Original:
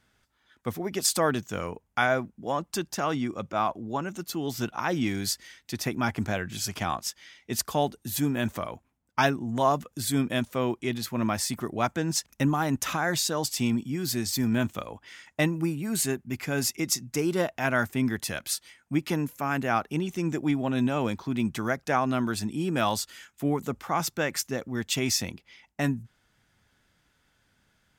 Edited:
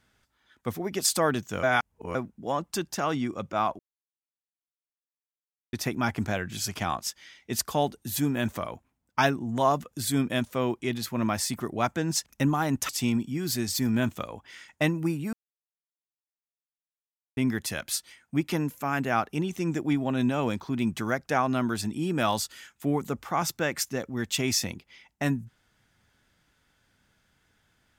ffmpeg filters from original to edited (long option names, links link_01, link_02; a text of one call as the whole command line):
ffmpeg -i in.wav -filter_complex "[0:a]asplit=8[link_01][link_02][link_03][link_04][link_05][link_06][link_07][link_08];[link_01]atrim=end=1.632[link_09];[link_02]atrim=start=1.628:end=2.152,asetpts=PTS-STARTPTS,areverse[link_10];[link_03]atrim=start=2.148:end=3.79,asetpts=PTS-STARTPTS,afade=type=out:start_time=1.638:duration=0.004:curve=hsin[link_11];[link_04]atrim=start=3.79:end=5.73,asetpts=PTS-STARTPTS,volume=0[link_12];[link_05]atrim=start=5.73:end=12.892,asetpts=PTS-STARTPTS,afade=type=in:duration=0.004:curve=hsin[link_13];[link_06]atrim=start=13.468:end=15.91,asetpts=PTS-STARTPTS,afade=type=out:start_time=2.438:duration=0.004:curve=hsin[link_14];[link_07]atrim=start=15.91:end=17.95,asetpts=PTS-STARTPTS,volume=0[link_15];[link_08]atrim=start=17.95,asetpts=PTS-STARTPTS,afade=type=in:duration=0.004:curve=hsin[link_16];[link_09][link_10]acrossfade=duration=0.004:curve1=hsin:curve2=hsin[link_17];[link_11][link_12][link_13]concat=n=3:v=0:a=1[link_18];[link_17][link_18]acrossfade=duration=0.004:curve1=hsin:curve2=hsin[link_19];[link_14][link_15][link_16]concat=n=3:v=0:a=1[link_20];[link_19][link_20]acrossfade=duration=0.004:curve1=hsin:curve2=hsin" out.wav